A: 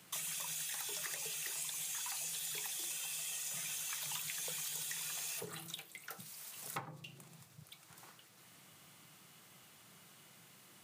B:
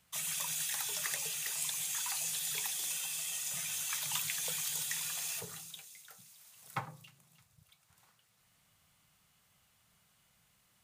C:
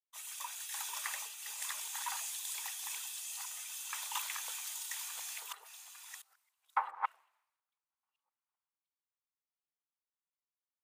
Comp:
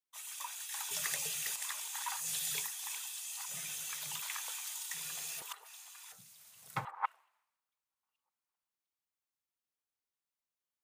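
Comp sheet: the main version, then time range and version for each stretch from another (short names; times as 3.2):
C
0.91–1.56 from B
2.23–2.67 from B, crossfade 0.16 s
3.49–4.22 from A
4.94–5.42 from A
6.12–6.85 from B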